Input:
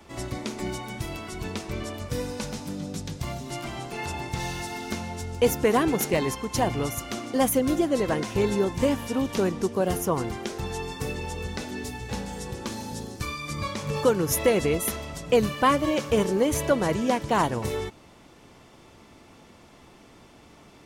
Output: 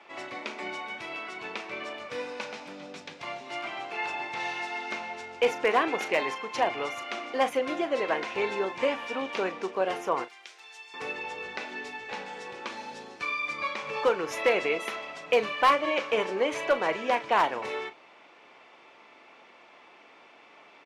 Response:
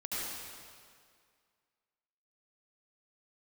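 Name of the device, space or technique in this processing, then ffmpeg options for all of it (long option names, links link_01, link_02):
megaphone: -filter_complex "[0:a]asettb=1/sr,asplit=3[link_01][link_02][link_03];[link_01]atrim=end=10.244[link_04];[link_02]atrim=start=10.24:end=10.94,asetpts=PTS-STARTPTS,afade=type=in:duration=0.004:curve=qsin,afade=type=out:start_time=0.696:duration=0.004:curve=qsin,aderivative[link_05];[link_03]atrim=start=10.936[link_06];[link_04][link_05]acrossfade=duration=0.004:curve1=hsin:curve2=qsin[link_07];[link_07][link_06]acrossfade=duration=0.004:curve1=qsin:curve2=hsin,highpass=580,lowpass=3100,equalizer=frequency=2400:width_type=o:width=0.4:gain=6,asoftclip=type=hard:threshold=-16.5dB,asplit=2[link_08][link_09];[link_09]adelay=37,volume=-12.5dB[link_10];[link_08][link_10]amix=inputs=2:normalize=0,volume=1.5dB"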